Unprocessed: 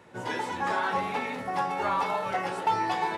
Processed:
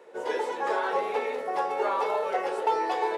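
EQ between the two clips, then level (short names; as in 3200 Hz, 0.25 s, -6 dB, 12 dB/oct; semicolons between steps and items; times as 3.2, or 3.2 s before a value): resonant high-pass 450 Hz, resonance Q 4.9; -3.0 dB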